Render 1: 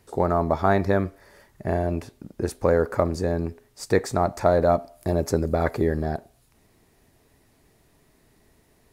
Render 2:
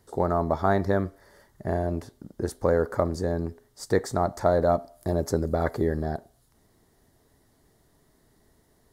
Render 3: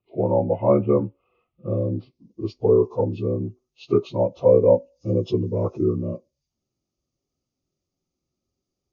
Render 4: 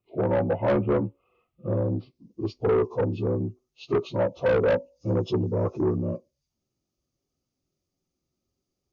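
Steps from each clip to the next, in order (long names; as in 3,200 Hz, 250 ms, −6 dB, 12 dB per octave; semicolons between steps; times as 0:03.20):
parametric band 2,500 Hz −14.5 dB 0.28 octaves; level −2.5 dB
partials spread apart or drawn together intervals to 80%; low-pass filter sweep 2,700 Hz → 7,100 Hz, 0:01.56–0:02.46; every bin expanded away from the loudest bin 1.5 to 1; level +6.5 dB
soft clipping −17.5 dBFS, distortion −9 dB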